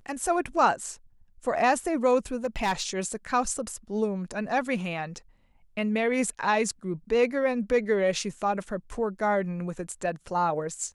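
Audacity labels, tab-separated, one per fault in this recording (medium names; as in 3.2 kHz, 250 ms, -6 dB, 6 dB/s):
2.440000	2.820000	clipped -21.5 dBFS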